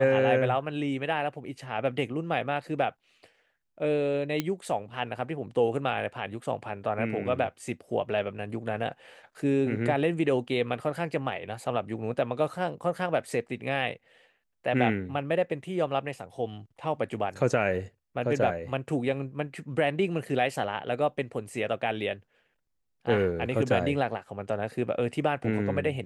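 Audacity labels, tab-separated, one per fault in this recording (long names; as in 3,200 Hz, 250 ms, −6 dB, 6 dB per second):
4.400000	4.400000	click −13 dBFS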